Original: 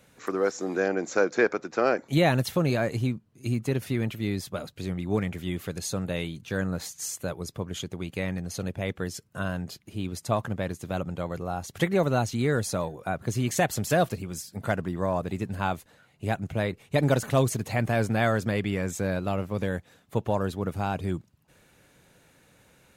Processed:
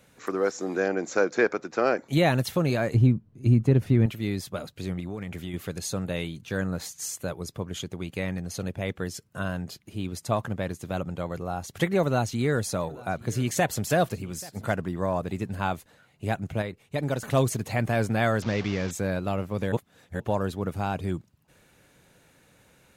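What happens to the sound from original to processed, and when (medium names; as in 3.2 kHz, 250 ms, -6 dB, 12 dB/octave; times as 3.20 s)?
2.94–4.06 s: tilt EQ -3 dB/octave
4.99–5.54 s: compression 10:1, threshold -29 dBFS
12.03–14.74 s: delay 834 ms -21.5 dB
16.62–17.23 s: gain -5.5 dB
18.42–18.91 s: one-bit delta coder 32 kbps, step -32.5 dBFS
19.72–20.20 s: reverse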